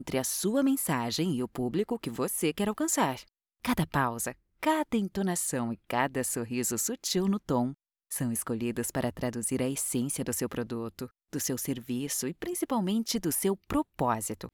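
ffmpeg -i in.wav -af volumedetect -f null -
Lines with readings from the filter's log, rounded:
mean_volume: -30.8 dB
max_volume: -11.7 dB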